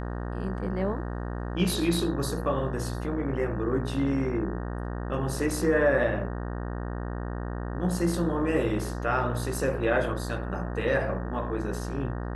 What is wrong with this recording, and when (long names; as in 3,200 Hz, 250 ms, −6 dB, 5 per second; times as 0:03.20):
mains buzz 60 Hz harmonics 31 −33 dBFS